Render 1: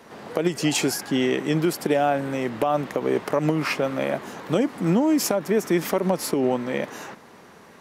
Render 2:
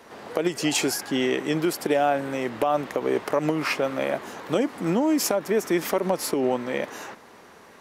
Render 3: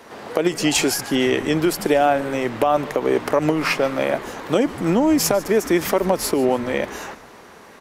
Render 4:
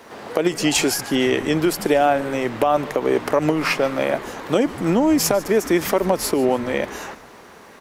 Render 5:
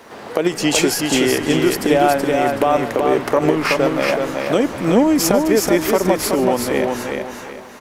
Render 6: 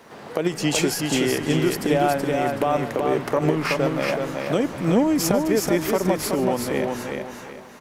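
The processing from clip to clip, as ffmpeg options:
ffmpeg -i in.wav -af "equalizer=frequency=160:width=1.1:gain=-6.5" out.wav
ffmpeg -i in.wav -filter_complex "[0:a]asplit=4[link_01][link_02][link_03][link_04];[link_02]adelay=148,afreqshift=-150,volume=-18.5dB[link_05];[link_03]adelay=296,afreqshift=-300,volume=-26dB[link_06];[link_04]adelay=444,afreqshift=-450,volume=-33.6dB[link_07];[link_01][link_05][link_06][link_07]amix=inputs=4:normalize=0,volume=5dB" out.wav
ffmpeg -i in.wav -af "acrusher=bits=10:mix=0:aa=0.000001" out.wav
ffmpeg -i in.wav -af "aecho=1:1:376|752|1128|1504:0.631|0.196|0.0606|0.0188,volume=1.5dB" out.wav
ffmpeg -i in.wav -af "equalizer=frequency=150:width_type=o:width=0.7:gain=7,volume=-6dB" out.wav

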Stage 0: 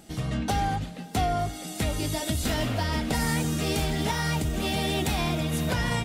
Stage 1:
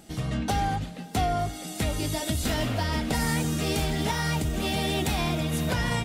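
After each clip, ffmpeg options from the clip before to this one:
ffmpeg -i in.wav -af anull out.wav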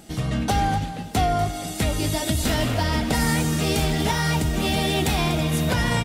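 ffmpeg -i in.wav -af "aecho=1:1:243:0.224,volume=4.5dB" out.wav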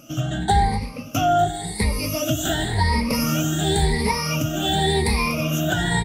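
ffmpeg -i in.wav -af "afftfilt=real='re*pow(10,22/40*sin(2*PI*(0.9*log(max(b,1)*sr/1024/100)/log(2)-(0.92)*(pts-256)/sr)))':imag='im*pow(10,22/40*sin(2*PI*(0.9*log(max(b,1)*sr/1024/100)/log(2)-(0.92)*(pts-256)/sr)))':win_size=1024:overlap=0.75,volume=-4dB" out.wav

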